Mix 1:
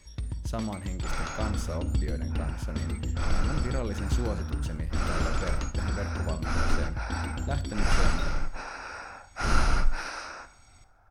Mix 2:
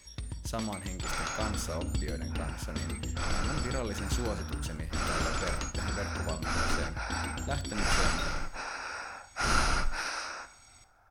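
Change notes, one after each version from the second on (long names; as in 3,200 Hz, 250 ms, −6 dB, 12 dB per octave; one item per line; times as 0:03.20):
master: add spectral tilt +1.5 dB per octave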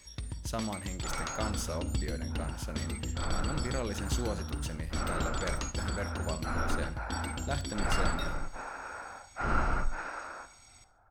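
second sound: add low-pass filter 1,400 Hz 12 dB per octave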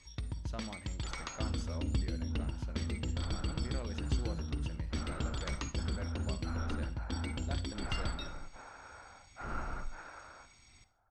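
speech −9.0 dB
second sound −10.0 dB
master: add high-frequency loss of the air 89 metres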